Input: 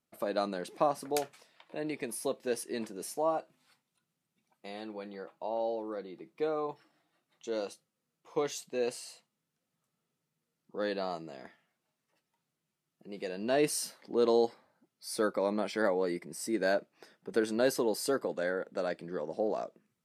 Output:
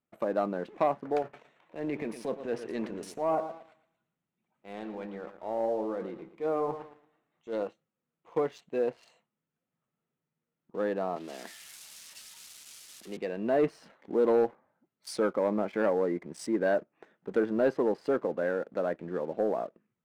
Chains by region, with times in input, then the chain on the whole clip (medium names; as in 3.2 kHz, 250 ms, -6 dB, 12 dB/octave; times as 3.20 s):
1.22–7.63 s: transient shaper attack -8 dB, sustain +5 dB + modulated delay 113 ms, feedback 33%, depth 54 cents, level -10.5 dB
11.16–13.17 s: zero-crossing glitches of -39.5 dBFS + steep high-pass 180 Hz + treble shelf 2.7 kHz +8.5 dB
whole clip: local Wiener filter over 9 samples; low-pass that closes with the level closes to 1.7 kHz, closed at -30.5 dBFS; waveshaping leveller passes 1